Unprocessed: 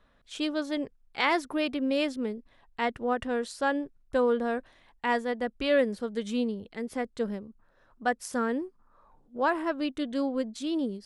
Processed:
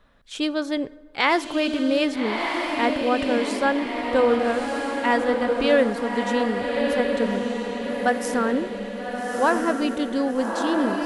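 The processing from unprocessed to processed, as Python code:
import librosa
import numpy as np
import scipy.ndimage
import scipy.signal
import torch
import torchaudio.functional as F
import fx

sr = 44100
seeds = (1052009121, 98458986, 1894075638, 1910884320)

y = fx.echo_diffused(x, sr, ms=1266, feedback_pct=50, wet_db=-3.0)
y = fx.rev_plate(y, sr, seeds[0], rt60_s=1.4, hf_ratio=0.55, predelay_ms=0, drr_db=18.0)
y = y * librosa.db_to_amplitude(5.5)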